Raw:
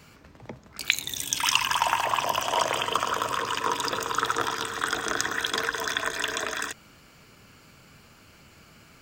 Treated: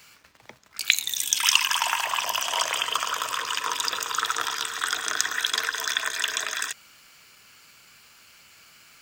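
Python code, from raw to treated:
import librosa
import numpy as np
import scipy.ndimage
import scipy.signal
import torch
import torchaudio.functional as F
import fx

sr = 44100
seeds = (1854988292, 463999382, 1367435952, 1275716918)

p1 = fx.tilt_shelf(x, sr, db=-10.0, hz=840.0)
p2 = fx.quant_dither(p1, sr, seeds[0], bits=8, dither='none')
p3 = p1 + F.gain(torch.from_numpy(p2), -5.0).numpy()
y = F.gain(torch.from_numpy(p3), -8.5).numpy()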